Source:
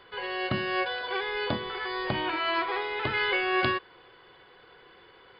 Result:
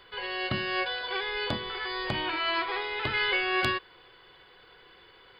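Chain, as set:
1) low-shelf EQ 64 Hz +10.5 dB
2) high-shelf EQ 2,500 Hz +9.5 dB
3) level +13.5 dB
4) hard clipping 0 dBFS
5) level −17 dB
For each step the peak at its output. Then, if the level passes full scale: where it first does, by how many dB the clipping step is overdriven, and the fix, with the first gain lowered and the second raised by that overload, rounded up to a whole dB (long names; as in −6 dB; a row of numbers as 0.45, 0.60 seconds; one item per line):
−10.5, −5.5, +8.0, 0.0, −17.0 dBFS
step 3, 8.0 dB
step 3 +5.5 dB, step 5 −9 dB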